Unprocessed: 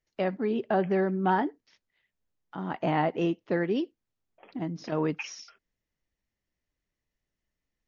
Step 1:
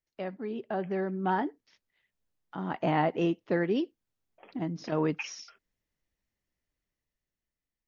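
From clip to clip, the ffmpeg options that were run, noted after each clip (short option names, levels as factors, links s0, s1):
-af "dynaudnorm=f=380:g=7:m=2.51,volume=0.398"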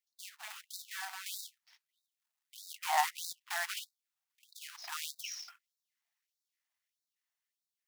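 -af "acrusher=bits=2:mode=log:mix=0:aa=0.000001,afftfilt=real='re*gte(b*sr/1024,620*pow(3700/620,0.5+0.5*sin(2*PI*1.6*pts/sr)))':imag='im*gte(b*sr/1024,620*pow(3700/620,0.5+0.5*sin(2*PI*1.6*pts/sr)))':win_size=1024:overlap=0.75"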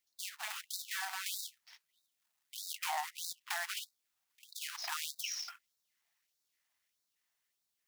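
-af "acompressor=threshold=0.00794:ratio=5,volume=2.11"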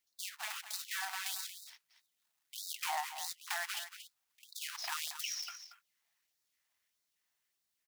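-af "aecho=1:1:231:0.282"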